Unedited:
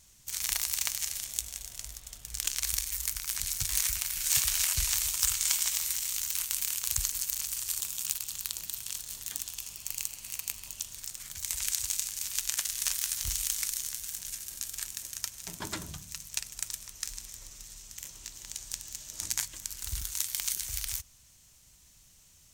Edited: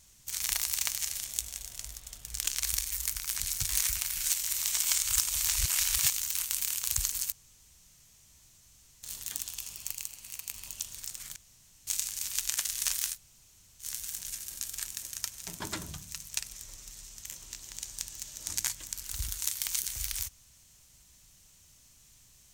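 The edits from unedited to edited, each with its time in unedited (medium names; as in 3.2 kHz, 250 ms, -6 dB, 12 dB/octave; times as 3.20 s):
4.33–6.10 s: reverse
7.32–9.03 s: room tone
9.92–10.54 s: gain -4 dB
11.36–11.87 s: room tone
13.13–13.84 s: room tone, crossfade 0.10 s
16.51–17.24 s: delete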